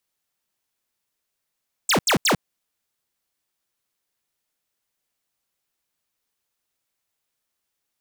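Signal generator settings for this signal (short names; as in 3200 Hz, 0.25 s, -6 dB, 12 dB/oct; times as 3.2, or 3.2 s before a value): burst of laser zaps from 9100 Hz, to 120 Hz, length 0.10 s square, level -18 dB, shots 3, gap 0.08 s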